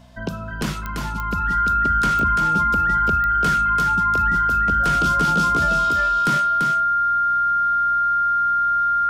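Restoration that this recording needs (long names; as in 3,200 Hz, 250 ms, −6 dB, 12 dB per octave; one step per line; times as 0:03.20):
click removal
hum removal 61.6 Hz, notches 4
notch filter 1,400 Hz, Q 30
echo removal 339 ms −5 dB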